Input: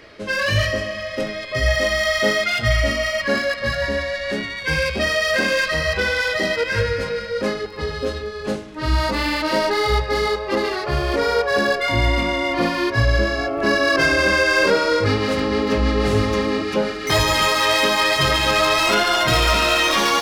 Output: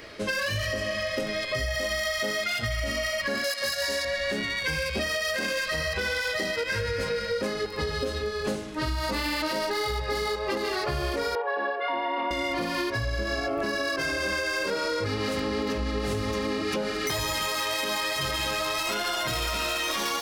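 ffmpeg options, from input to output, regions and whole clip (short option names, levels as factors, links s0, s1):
-filter_complex "[0:a]asettb=1/sr,asplit=3[s0][s1][s2];[s0]atrim=end=3.444[s3];[s1]atrim=start=3.44:end=4.05,asetpts=PTS-STARTPTS,afade=t=in:d=0.004:c=qsin,afade=t=out:st=0.606:d=0.004:c=qsin,bass=f=250:g=-14,treble=f=4000:g=13,asoftclip=type=hard:threshold=0.188[s4];[s2]atrim=start=4.046[s5];[s3][s4]acrossfade=d=0.004:c1=hsin:c2=qsin[s6];[s6][s5]acrossfade=d=0.004:c1=qsin:c2=hsin,asettb=1/sr,asplit=3[s7][s8][s9];[s7]atrim=end=11.354[s10];[s8]atrim=start=11.35:end=12.31,asetpts=PTS-STARTPTS,afade=t=in:d=0.004:c=qsin,afade=t=out:st=0.956:d=0.004:c=qsin,acrusher=bits=7:mix=0:aa=0.5,highpass=f=340:w=0.5412,highpass=f=340:w=1.3066,equalizer=f=360:t=q:w=4:g=-4,equalizer=f=580:t=q:w=4:g=-5,equalizer=f=860:t=q:w=4:g=9,equalizer=f=1400:t=q:w=4:g=-5,equalizer=f=2200:t=q:w=4:g=-9,lowpass=f=2500:w=0.5412,lowpass=f=2500:w=1.3066[s11];[s9]atrim=start=12.306[s12];[s10][s11]acrossfade=d=0.004:c1=hsin:c2=qsin[s13];[s13][s12]acrossfade=d=0.004:c1=qsin:c2=hsin,highshelf=f=6900:g=10.5,alimiter=limit=0.178:level=0:latency=1:release=155,acompressor=threshold=0.0562:ratio=6"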